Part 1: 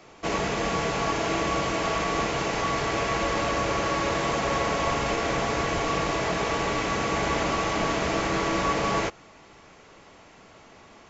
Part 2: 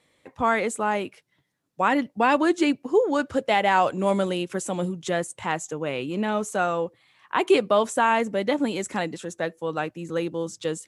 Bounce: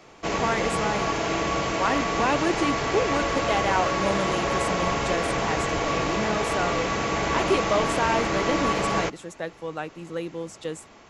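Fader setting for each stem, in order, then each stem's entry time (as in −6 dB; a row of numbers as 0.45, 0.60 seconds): +0.5, −4.5 decibels; 0.00, 0.00 seconds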